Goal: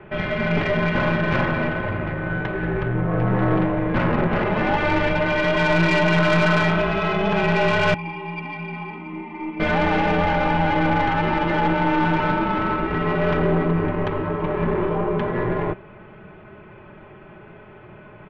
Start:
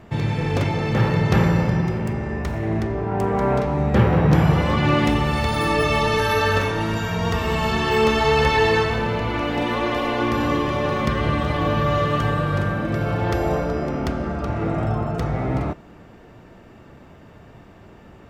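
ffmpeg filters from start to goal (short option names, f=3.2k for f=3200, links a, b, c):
-filter_complex "[0:a]aecho=1:1:4.6:0.57,asplit=2[a][b];[b]alimiter=limit=-14.5dB:level=0:latency=1:release=20,volume=3dB[c];[a][c]amix=inputs=2:normalize=0,highpass=f=350:t=q:w=0.5412,highpass=f=350:t=q:w=1.307,lowpass=f=3.2k:t=q:w=0.5176,lowpass=f=3.2k:t=q:w=0.7071,lowpass=f=3.2k:t=q:w=1.932,afreqshift=-270,asettb=1/sr,asplit=3[d][e][f];[d]atrim=end=7.944[g];[e]atrim=start=7.94:end=9.6,asetpts=PTS-STARTPTS,afade=t=in:d=0.004:c=qsin,afade=t=out:st=1.656:d=0.004:c=qsin,asplit=3[h][i][j];[h]bandpass=f=300:t=q:w=8,volume=0dB[k];[i]bandpass=f=870:t=q:w=8,volume=-6dB[l];[j]bandpass=f=2.24k:t=q:w=8,volume=-9dB[m];[k][l][m]amix=inputs=3:normalize=0[n];[f]atrim=start=9.596[o];[g][n]acrossfade=d=0.004:c1=hsin:c2=qsin[p];[p][o]acrossfade=d=0.004:c1=qsin:c2=hsin,aeval=exprs='(tanh(4.47*val(0)+0.5)-tanh(0.5))/4.47':c=same"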